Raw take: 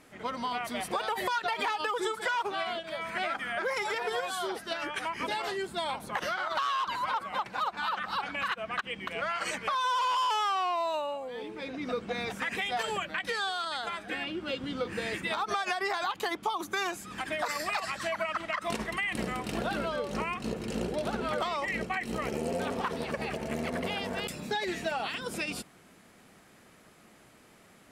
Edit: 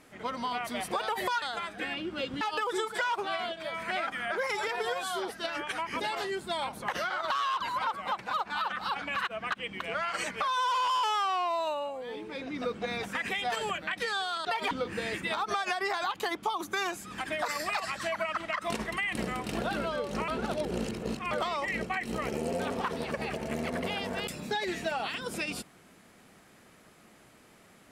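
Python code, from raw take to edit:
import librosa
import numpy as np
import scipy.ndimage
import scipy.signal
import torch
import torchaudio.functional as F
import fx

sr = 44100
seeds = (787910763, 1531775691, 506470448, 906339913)

y = fx.edit(x, sr, fx.swap(start_s=1.42, length_s=0.26, other_s=13.72, other_length_s=0.99),
    fx.reverse_span(start_s=20.28, length_s=1.03), tone=tone)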